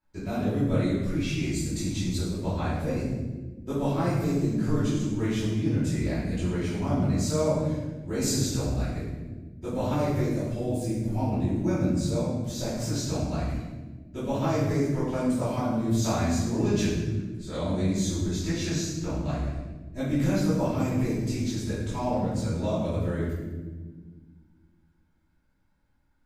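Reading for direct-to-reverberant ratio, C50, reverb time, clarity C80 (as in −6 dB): −13.0 dB, 0.0 dB, 1.4 s, 3.0 dB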